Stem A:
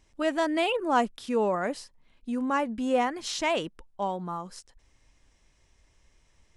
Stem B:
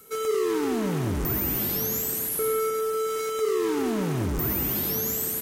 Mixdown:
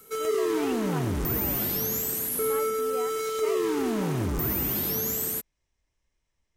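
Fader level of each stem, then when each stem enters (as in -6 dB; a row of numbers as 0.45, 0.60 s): -14.5, -1.0 dB; 0.00, 0.00 s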